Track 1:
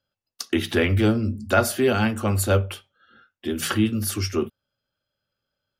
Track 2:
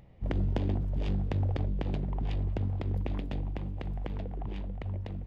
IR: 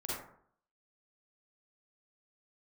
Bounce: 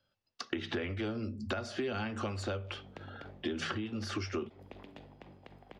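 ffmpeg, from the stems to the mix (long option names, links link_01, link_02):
-filter_complex "[0:a]lowpass=frequency=5700:width=0.5412,lowpass=frequency=5700:width=1.3066,acompressor=threshold=-28dB:ratio=6,volume=3dB,asplit=2[link_01][link_02];[1:a]highpass=frequency=540:poles=1,adelay=1650,volume=-9dB,asplit=2[link_03][link_04];[link_04]volume=-10dB[link_05];[link_02]apad=whole_len=304906[link_06];[link_03][link_06]sidechaincompress=threshold=-47dB:ratio=8:attack=16:release=148[link_07];[2:a]atrim=start_sample=2205[link_08];[link_05][link_08]afir=irnorm=-1:irlink=0[link_09];[link_01][link_07][link_09]amix=inputs=3:normalize=0,acrossover=split=350|2300[link_10][link_11][link_12];[link_10]acompressor=threshold=-40dB:ratio=4[link_13];[link_11]acompressor=threshold=-37dB:ratio=4[link_14];[link_12]acompressor=threshold=-46dB:ratio=4[link_15];[link_13][link_14][link_15]amix=inputs=3:normalize=0"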